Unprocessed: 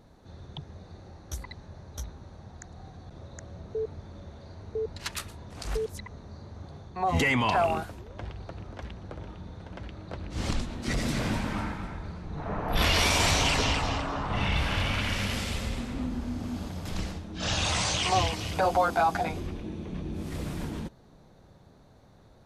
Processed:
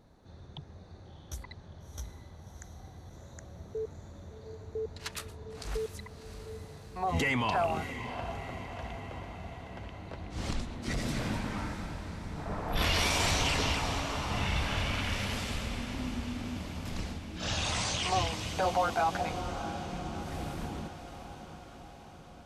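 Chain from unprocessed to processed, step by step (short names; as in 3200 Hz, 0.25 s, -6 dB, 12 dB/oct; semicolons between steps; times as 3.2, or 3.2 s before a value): diffused feedback echo 0.664 s, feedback 62%, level -10.5 dB; gain -4.5 dB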